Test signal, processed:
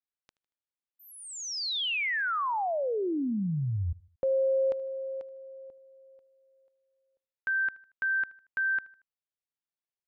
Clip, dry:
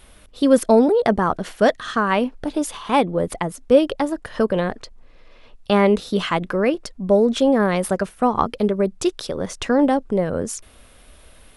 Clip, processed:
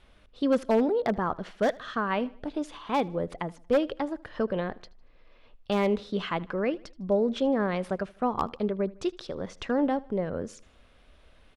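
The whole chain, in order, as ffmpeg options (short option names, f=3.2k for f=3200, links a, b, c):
-filter_complex "[0:a]lowpass=4.3k,aeval=exprs='0.473*(abs(mod(val(0)/0.473+3,4)-2)-1)':c=same,asplit=2[a][b];[b]aecho=0:1:77|154|231:0.075|0.033|0.0145[c];[a][c]amix=inputs=2:normalize=0,volume=-9dB"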